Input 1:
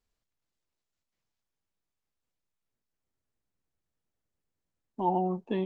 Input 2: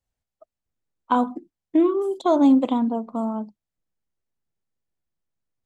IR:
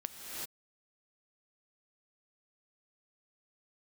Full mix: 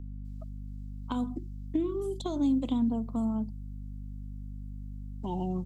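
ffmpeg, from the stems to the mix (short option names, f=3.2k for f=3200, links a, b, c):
-filter_complex "[0:a]highshelf=f=2.3k:g=10.5,adelay=250,volume=1.5dB[a];[1:a]acompressor=threshold=-20dB:ratio=6,aeval=exprs='val(0)+0.0112*(sin(2*PI*50*n/s)+sin(2*PI*2*50*n/s)/2+sin(2*PI*3*50*n/s)/3+sin(2*PI*4*50*n/s)/4+sin(2*PI*5*50*n/s)/5)':c=same,volume=0.5dB[b];[a][b]amix=inputs=2:normalize=0,acrossover=split=280|3000[c][d][e];[d]acompressor=threshold=-51dB:ratio=2[f];[c][f][e]amix=inputs=3:normalize=0"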